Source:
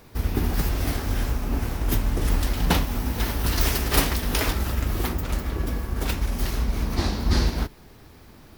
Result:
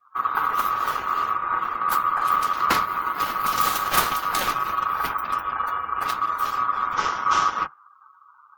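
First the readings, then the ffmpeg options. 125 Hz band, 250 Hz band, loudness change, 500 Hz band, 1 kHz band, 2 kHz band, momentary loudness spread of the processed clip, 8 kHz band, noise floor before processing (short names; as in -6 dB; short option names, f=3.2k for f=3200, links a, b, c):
-20.0 dB, -12.0 dB, +2.5 dB, -5.0 dB, +14.0 dB, +4.5 dB, 5 LU, -1.5 dB, -49 dBFS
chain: -af "aeval=exprs='val(0)*sin(2*PI*1200*n/s)':c=same,bandreject=f=50:t=h:w=6,bandreject=f=100:t=h:w=6,bandreject=f=150:t=h:w=6,afftdn=nr=32:nf=-44,volume=2.5dB"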